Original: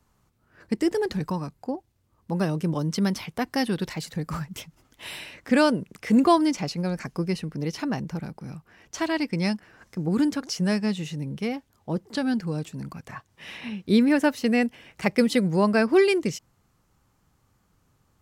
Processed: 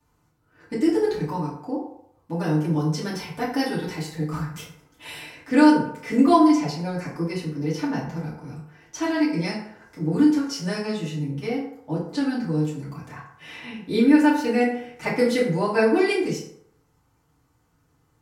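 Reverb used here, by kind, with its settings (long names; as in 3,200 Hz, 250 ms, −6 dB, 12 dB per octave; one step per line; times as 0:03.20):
feedback delay network reverb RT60 0.72 s, low-frequency decay 0.75×, high-frequency decay 0.55×, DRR −9 dB
level −8.5 dB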